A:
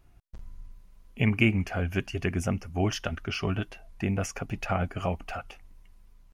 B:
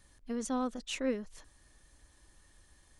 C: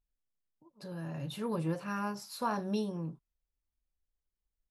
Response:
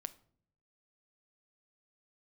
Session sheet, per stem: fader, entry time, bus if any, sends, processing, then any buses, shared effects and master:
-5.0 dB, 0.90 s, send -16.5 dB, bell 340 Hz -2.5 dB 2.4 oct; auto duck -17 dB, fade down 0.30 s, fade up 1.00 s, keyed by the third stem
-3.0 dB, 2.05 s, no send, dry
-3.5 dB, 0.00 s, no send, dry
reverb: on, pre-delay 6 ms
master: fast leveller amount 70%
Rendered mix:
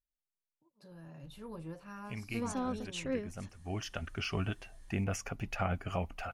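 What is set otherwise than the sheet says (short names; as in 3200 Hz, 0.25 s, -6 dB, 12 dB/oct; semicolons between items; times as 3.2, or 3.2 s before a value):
stem C -3.5 dB -> -11.0 dB; master: missing fast leveller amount 70%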